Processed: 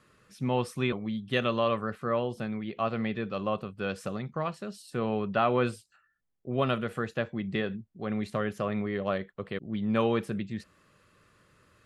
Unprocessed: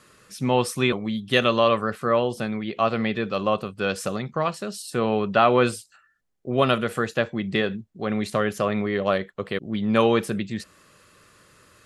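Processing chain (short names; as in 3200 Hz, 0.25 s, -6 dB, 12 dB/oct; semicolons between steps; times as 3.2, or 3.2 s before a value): tone controls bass +4 dB, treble -7 dB; gain -8 dB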